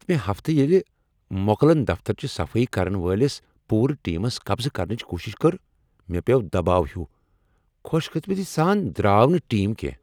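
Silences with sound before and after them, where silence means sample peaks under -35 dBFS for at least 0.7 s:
7.05–7.85 s

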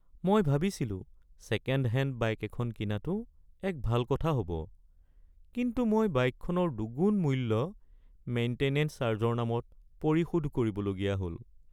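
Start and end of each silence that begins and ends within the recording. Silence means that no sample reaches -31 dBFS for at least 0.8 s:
4.62–5.57 s

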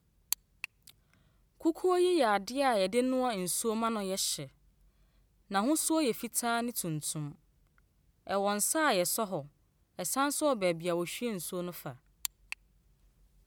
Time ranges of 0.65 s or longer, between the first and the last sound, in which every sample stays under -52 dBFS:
4.49–5.50 s

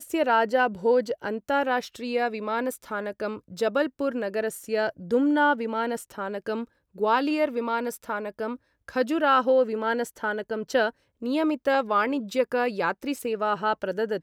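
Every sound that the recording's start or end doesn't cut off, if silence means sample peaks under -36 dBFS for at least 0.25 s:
6.98–8.56 s
8.88–10.90 s

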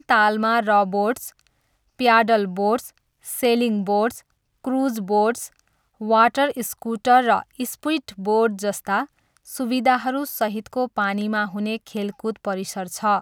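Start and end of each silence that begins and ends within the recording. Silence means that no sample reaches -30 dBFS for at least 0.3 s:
1.28–1.99 s
2.87–3.27 s
4.18–4.65 s
5.46–6.01 s
9.04–9.50 s

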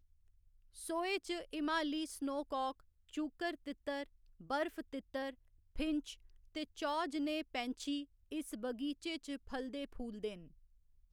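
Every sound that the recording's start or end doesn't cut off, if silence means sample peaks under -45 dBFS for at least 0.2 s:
0.78–2.72 s
3.14–4.03 s
4.41–5.30 s
5.76–6.13 s
6.55–8.03 s
8.32–10.43 s

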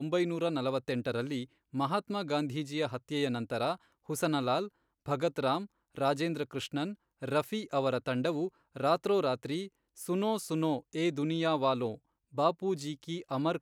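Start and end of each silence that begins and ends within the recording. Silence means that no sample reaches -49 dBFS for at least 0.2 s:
1.45–1.73 s
3.76–4.09 s
4.68–5.06 s
5.66–5.95 s
6.94–7.22 s
8.49–8.75 s
9.68–9.97 s
11.97–12.34 s

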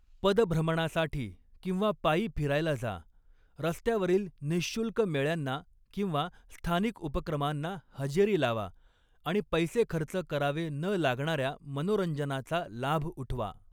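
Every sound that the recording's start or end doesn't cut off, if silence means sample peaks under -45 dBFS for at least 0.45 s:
3.59–8.70 s

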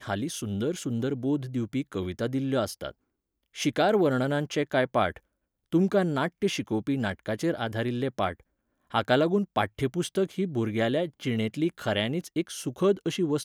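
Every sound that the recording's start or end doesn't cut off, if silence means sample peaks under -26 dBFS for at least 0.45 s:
3.60–5.10 s
5.74–8.32 s

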